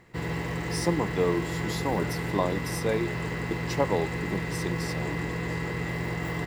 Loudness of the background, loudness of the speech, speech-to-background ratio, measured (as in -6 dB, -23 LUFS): -31.5 LUFS, -31.5 LUFS, 0.0 dB